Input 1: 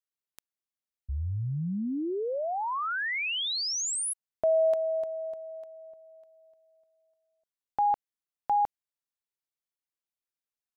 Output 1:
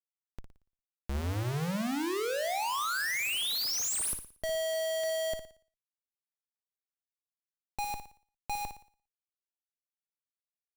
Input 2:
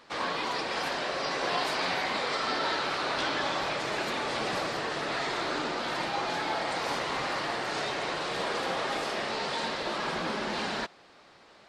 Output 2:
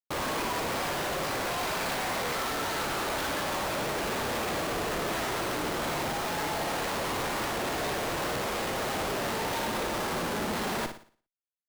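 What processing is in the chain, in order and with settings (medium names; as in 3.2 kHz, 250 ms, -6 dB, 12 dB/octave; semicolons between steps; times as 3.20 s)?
Schmitt trigger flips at -35 dBFS; flutter echo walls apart 9.9 m, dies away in 0.43 s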